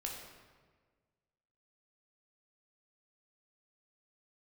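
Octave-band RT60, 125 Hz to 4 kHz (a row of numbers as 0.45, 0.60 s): 1.8, 1.7, 1.6, 1.4, 1.3, 1.0 s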